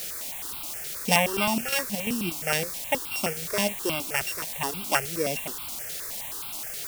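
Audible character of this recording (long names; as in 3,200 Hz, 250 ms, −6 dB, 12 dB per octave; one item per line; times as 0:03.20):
a buzz of ramps at a fixed pitch in blocks of 16 samples
chopped level 2.9 Hz, depth 60%, duty 65%
a quantiser's noise floor 6 bits, dither triangular
notches that jump at a steady rate 9.5 Hz 270–1,800 Hz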